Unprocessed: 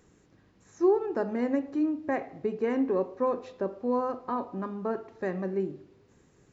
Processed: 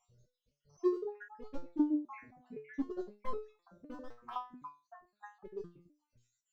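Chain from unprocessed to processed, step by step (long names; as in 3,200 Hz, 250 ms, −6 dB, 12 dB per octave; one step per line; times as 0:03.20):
time-frequency cells dropped at random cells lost 72%
gain into a clipping stage and back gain 25.5 dB
low-shelf EQ 75 Hz +11 dB
phaser swept by the level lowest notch 280 Hz, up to 2,300 Hz, full sweep at −27.5 dBFS
step-sequenced resonator 3.9 Hz 120–430 Hz
level +7.5 dB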